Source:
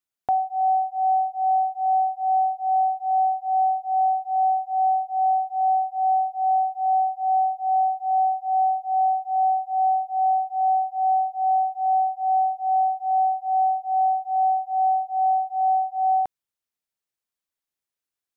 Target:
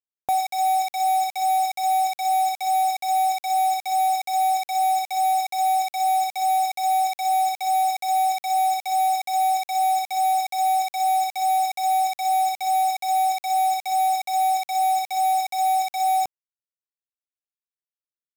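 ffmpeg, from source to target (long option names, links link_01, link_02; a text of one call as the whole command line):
ffmpeg -i in.wav -af "acrusher=bits=4:mix=0:aa=0.000001" out.wav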